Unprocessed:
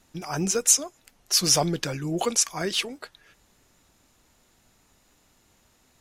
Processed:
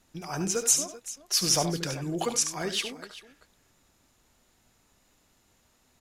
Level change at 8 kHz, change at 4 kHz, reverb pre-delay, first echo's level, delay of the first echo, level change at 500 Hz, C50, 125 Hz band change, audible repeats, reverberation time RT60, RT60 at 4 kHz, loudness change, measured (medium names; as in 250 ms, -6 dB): -3.5 dB, -3.5 dB, no reverb, -9.5 dB, 72 ms, -3.5 dB, no reverb, -3.5 dB, 2, no reverb, no reverb, -3.5 dB